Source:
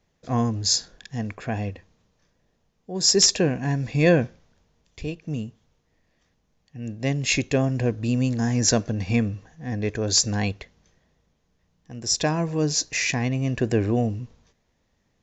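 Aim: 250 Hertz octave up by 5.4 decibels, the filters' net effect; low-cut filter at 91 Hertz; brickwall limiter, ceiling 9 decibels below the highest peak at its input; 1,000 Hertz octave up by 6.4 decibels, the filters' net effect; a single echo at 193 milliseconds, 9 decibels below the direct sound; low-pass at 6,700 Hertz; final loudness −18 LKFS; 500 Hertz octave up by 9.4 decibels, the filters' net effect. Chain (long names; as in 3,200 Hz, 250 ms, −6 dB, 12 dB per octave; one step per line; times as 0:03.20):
high-pass filter 91 Hz
low-pass filter 6,700 Hz
parametric band 250 Hz +4 dB
parametric band 500 Hz +9 dB
parametric band 1,000 Hz +4 dB
brickwall limiter −8.5 dBFS
single-tap delay 193 ms −9 dB
level +3.5 dB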